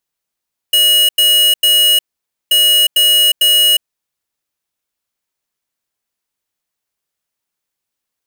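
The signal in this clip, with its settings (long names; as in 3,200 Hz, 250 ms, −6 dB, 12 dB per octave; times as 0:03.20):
beeps in groups square 2,900 Hz, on 0.36 s, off 0.09 s, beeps 3, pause 0.52 s, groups 2, −10 dBFS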